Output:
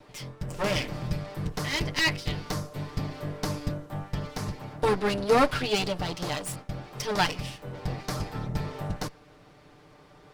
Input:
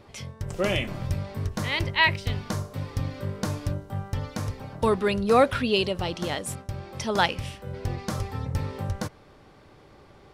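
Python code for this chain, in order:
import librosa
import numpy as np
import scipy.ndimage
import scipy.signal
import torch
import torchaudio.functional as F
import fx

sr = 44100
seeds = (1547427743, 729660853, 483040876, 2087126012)

y = fx.lower_of_two(x, sr, delay_ms=6.7)
y = fx.dynamic_eq(y, sr, hz=4800.0, q=4.0, threshold_db=-55.0, ratio=4.0, max_db=5)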